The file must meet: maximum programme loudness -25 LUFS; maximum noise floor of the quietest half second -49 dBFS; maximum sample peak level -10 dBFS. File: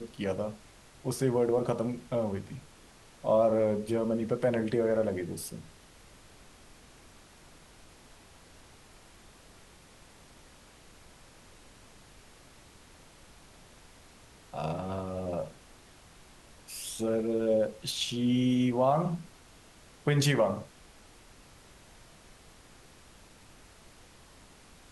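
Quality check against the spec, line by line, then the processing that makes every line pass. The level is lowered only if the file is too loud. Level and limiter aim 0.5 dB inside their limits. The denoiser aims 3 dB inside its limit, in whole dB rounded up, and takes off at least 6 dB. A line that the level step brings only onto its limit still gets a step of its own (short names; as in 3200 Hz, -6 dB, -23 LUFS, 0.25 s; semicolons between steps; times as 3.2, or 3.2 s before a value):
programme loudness -30.0 LUFS: OK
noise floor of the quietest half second -55 dBFS: OK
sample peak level -14.0 dBFS: OK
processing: none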